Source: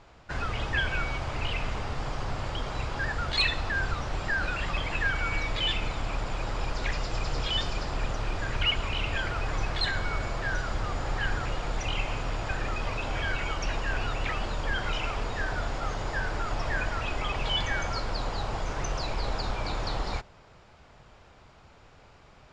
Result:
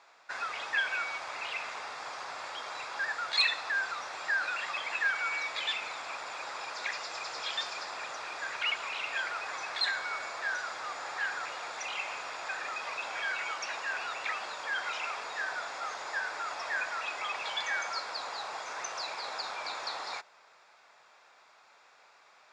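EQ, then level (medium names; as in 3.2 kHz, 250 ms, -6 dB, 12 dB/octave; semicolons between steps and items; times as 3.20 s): high-pass 870 Hz 12 dB/octave; band-stop 3 kHz, Q 7.2; 0.0 dB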